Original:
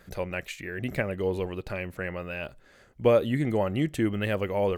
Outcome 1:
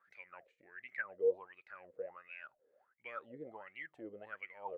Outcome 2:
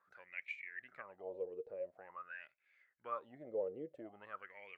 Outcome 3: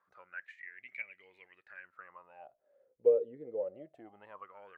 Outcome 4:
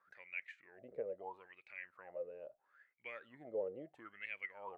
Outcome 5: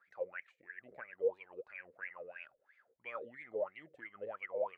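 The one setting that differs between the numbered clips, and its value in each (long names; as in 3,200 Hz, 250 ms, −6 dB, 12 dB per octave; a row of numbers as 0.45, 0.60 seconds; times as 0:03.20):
LFO wah, speed: 1.4, 0.47, 0.23, 0.75, 3 Hertz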